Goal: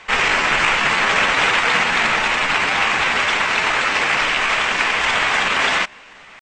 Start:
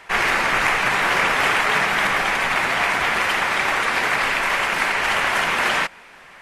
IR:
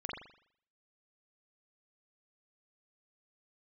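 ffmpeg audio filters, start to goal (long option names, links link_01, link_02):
-af "aresample=16000,acrusher=bits=6:mode=log:mix=0:aa=0.000001,aresample=44100,asetrate=49501,aresample=44100,atempo=0.890899,volume=2.5dB"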